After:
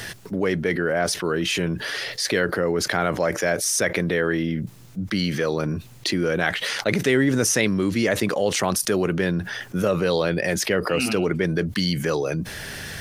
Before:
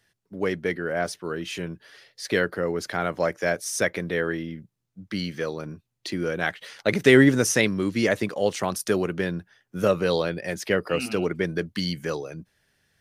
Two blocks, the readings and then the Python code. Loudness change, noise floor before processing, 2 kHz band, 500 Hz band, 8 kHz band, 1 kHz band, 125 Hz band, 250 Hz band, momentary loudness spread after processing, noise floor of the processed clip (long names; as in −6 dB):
+2.0 dB, −78 dBFS, +2.5 dB, +1.5 dB, +6.5 dB, +3.5 dB, +4.5 dB, +2.5 dB, 7 LU, −44 dBFS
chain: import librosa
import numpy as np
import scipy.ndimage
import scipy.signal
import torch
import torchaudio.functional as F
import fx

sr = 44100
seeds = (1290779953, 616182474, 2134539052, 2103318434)

y = fx.env_flatten(x, sr, amount_pct=70)
y = y * librosa.db_to_amplitude(-5.0)